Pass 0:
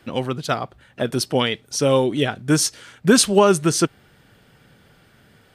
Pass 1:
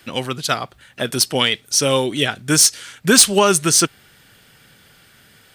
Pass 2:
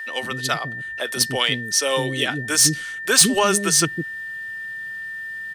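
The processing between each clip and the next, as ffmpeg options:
-filter_complex "[0:a]highshelf=f=4700:g=7,acrossover=split=1300[s0][s1];[s1]acontrast=89[s2];[s0][s2]amix=inputs=2:normalize=0,volume=0.841"
-filter_complex "[0:a]aeval=exprs='val(0)+0.0501*sin(2*PI*1800*n/s)':c=same,acrossover=split=340[s0][s1];[s0]adelay=160[s2];[s2][s1]amix=inputs=2:normalize=0,volume=0.708"

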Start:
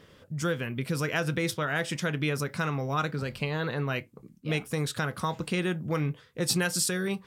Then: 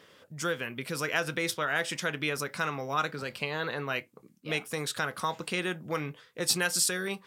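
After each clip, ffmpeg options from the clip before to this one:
-af "highpass=f=530:p=1,volume=1.19"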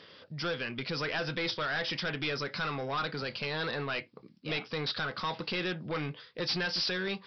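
-af "bass=f=250:g=1,treble=f=4000:g=12,aresample=11025,asoftclip=type=tanh:threshold=0.0316,aresample=44100,volume=1.26"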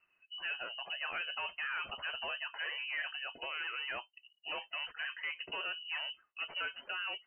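-af "lowpass=f=2600:t=q:w=0.5098,lowpass=f=2600:t=q:w=0.6013,lowpass=f=2600:t=q:w=0.9,lowpass=f=2600:t=q:w=2.563,afreqshift=-3100,afftdn=nr=18:nf=-44,volume=0.562"

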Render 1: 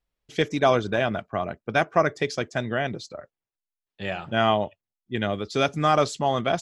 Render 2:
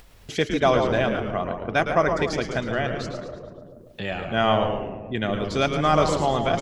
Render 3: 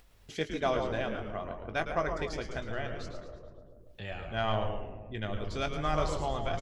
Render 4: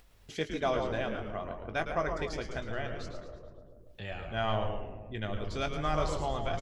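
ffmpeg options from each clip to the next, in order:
-filter_complex "[0:a]asplit=2[s0][s1];[s1]adelay=144,lowpass=f=1000:p=1,volume=0.531,asplit=2[s2][s3];[s3]adelay=144,lowpass=f=1000:p=1,volume=0.48,asplit=2[s4][s5];[s5]adelay=144,lowpass=f=1000:p=1,volume=0.48,asplit=2[s6][s7];[s7]adelay=144,lowpass=f=1000:p=1,volume=0.48,asplit=2[s8][s9];[s9]adelay=144,lowpass=f=1000:p=1,volume=0.48,asplit=2[s10][s11];[s11]adelay=144,lowpass=f=1000:p=1,volume=0.48[s12];[s2][s4][s6][s8][s10][s12]amix=inputs=6:normalize=0[s13];[s0][s13]amix=inputs=2:normalize=0,acompressor=mode=upward:threshold=0.0447:ratio=2.5,asplit=2[s14][s15];[s15]asplit=6[s16][s17][s18][s19][s20][s21];[s16]adelay=110,afreqshift=-120,volume=0.398[s22];[s17]adelay=220,afreqshift=-240,volume=0.2[s23];[s18]adelay=330,afreqshift=-360,volume=0.1[s24];[s19]adelay=440,afreqshift=-480,volume=0.0495[s25];[s20]adelay=550,afreqshift=-600,volume=0.0248[s26];[s21]adelay=660,afreqshift=-720,volume=0.0124[s27];[s22][s23][s24][s25][s26][s27]amix=inputs=6:normalize=0[s28];[s14][s28]amix=inputs=2:normalize=0"
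-filter_complex "[0:a]aeval=exprs='0.562*(cos(1*acos(clip(val(0)/0.562,-1,1)))-cos(1*PI/2))+0.0447*(cos(3*acos(clip(val(0)/0.562,-1,1)))-cos(3*PI/2))':c=same,asplit=2[s0][s1];[s1]adelay=19,volume=0.316[s2];[s0][s2]amix=inputs=2:normalize=0,asubboost=boost=6:cutoff=76,volume=0.355"
-af "asoftclip=type=tanh:threshold=0.168"

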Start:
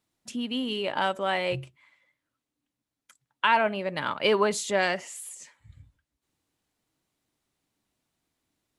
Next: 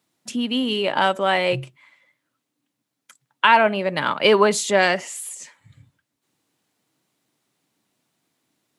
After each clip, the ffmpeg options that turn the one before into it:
-af "highpass=f=120:w=0.5412,highpass=f=120:w=1.3066,volume=2.37"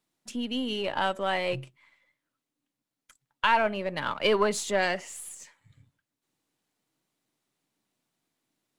-af "aeval=exprs='if(lt(val(0),0),0.708*val(0),val(0))':c=same,volume=0.447"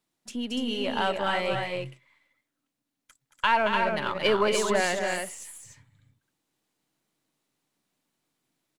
-af "aecho=1:1:224.5|291.5:0.447|0.562"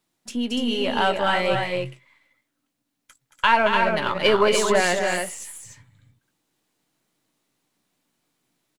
-filter_complex "[0:a]asplit=2[s0][s1];[s1]adelay=17,volume=0.282[s2];[s0][s2]amix=inputs=2:normalize=0,volume=1.78"

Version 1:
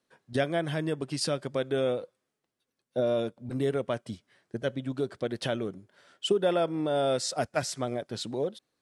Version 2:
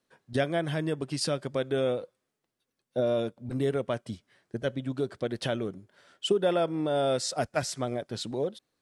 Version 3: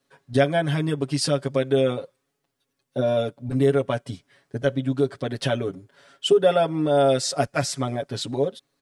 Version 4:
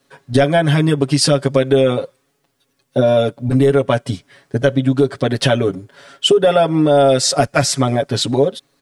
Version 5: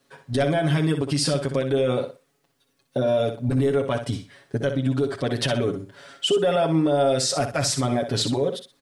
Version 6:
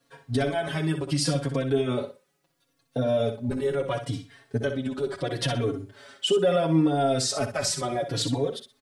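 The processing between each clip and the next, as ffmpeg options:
-af "lowshelf=f=60:g=7.5"
-af "aecho=1:1:7.2:0.98,volume=1.41"
-af "apsyclip=4.22,acompressor=threshold=0.355:ratio=3,volume=0.891"
-filter_complex "[0:a]alimiter=limit=0.299:level=0:latency=1:release=49,asplit=2[s0][s1];[s1]aecho=0:1:62|124|186:0.355|0.0745|0.0156[s2];[s0][s2]amix=inputs=2:normalize=0,volume=0.631"
-filter_complex "[0:a]asplit=2[s0][s1];[s1]adelay=3.8,afreqshift=-0.73[s2];[s0][s2]amix=inputs=2:normalize=1"

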